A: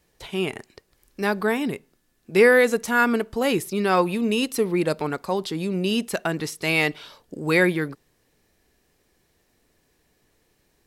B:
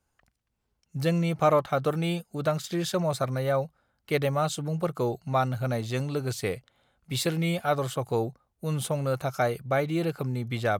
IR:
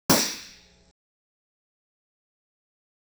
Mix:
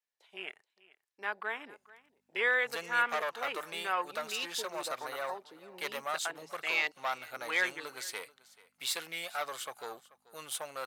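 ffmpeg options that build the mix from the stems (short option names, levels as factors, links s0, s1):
-filter_complex "[0:a]highshelf=f=8400:g=-6.5,afwtdn=0.0316,volume=0.447,asplit=2[s0][s1];[s1]volume=0.0891[s2];[1:a]aeval=exprs='val(0)+0.00501*(sin(2*PI*50*n/s)+sin(2*PI*2*50*n/s)/2+sin(2*PI*3*50*n/s)/3+sin(2*PI*4*50*n/s)/4+sin(2*PI*5*50*n/s)/5)':c=same,aeval=exprs='(tanh(11.2*val(0)+0.45)-tanh(0.45))/11.2':c=same,adelay=1700,volume=0.944,asplit=2[s3][s4];[s4]volume=0.0944[s5];[s2][s5]amix=inputs=2:normalize=0,aecho=0:1:436:1[s6];[s0][s3][s6]amix=inputs=3:normalize=0,highpass=1000"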